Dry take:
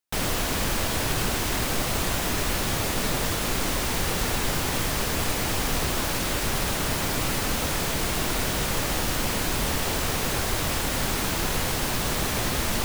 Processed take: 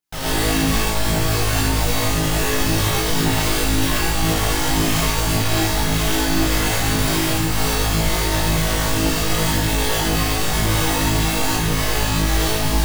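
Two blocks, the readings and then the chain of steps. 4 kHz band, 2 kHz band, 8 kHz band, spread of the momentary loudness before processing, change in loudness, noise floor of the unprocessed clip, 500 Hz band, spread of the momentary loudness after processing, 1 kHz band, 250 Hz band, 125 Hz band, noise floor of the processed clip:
+6.5 dB, +5.5 dB, +5.0 dB, 0 LU, +6.5 dB, -27 dBFS, +6.5 dB, 1 LU, +6.0 dB, +9.0 dB, +9.5 dB, -20 dBFS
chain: self-modulated delay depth 0.077 ms; bell 140 Hz +7 dB 0.26 oct; flutter echo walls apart 3.2 m, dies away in 0.91 s; phaser 1.9 Hz, delay 2.7 ms, feedback 47%; limiter -14.5 dBFS, peak gain reduction 11.5 dB; non-linear reverb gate 0.16 s rising, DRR -7.5 dB; gain -3.5 dB

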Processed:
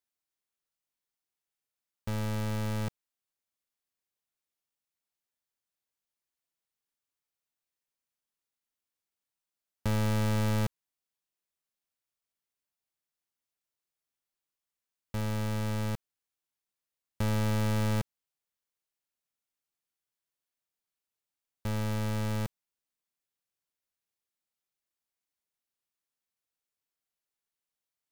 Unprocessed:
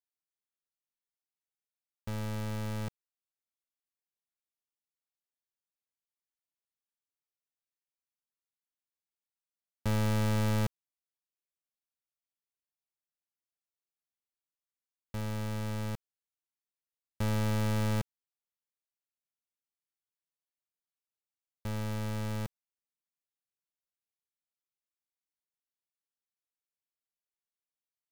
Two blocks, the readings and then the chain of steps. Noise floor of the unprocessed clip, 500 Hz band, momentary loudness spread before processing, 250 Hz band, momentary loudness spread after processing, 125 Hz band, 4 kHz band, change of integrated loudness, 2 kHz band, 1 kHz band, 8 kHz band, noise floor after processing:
under -85 dBFS, +2.0 dB, 14 LU, +2.0 dB, 11 LU, +2.0 dB, +2.0 dB, +1.5 dB, +2.0 dB, +2.0 dB, +2.0 dB, under -85 dBFS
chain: compressor, threshold -31 dBFS, peak gain reduction 3 dB; gain +3.5 dB

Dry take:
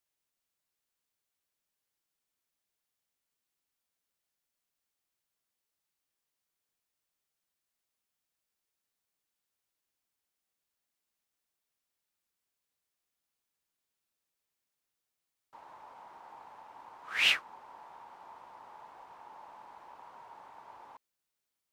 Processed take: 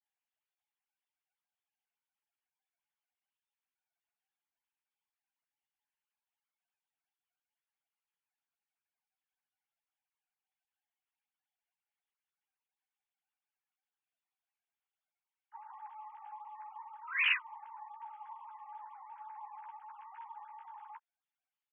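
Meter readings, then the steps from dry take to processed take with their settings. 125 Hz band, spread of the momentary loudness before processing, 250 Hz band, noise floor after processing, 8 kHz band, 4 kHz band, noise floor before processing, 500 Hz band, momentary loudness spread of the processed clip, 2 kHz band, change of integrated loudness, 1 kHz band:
n/a, 9 LU, under -30 dB, under -85 dBFS, under -25 dB, -9.0 dB, under -85 dBFS, under -25 dB, 20 LU, -1.0 dB, -11.5 dB, +2.5 dB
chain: sine-wave speech; doubler 13 ms -5 dB; gain -3.5 dB

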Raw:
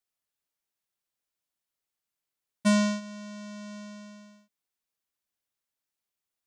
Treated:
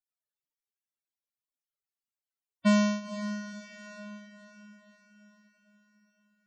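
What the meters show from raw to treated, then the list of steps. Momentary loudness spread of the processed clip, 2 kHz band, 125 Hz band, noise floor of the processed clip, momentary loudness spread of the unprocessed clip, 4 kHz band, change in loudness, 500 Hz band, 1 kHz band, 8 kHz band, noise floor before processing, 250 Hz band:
21 LU, 0.0 dB, n/a, under -85 dBFS, 19 LU, -2.0 dB, -2.0 dB, 0.0 dB, 0.0 dB, -4.5 dB, under -85 dBFS, 0.0 dB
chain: loudest bins only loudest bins 32; diffused feedback echo 0.505 s, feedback 50%, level -11.5 dB

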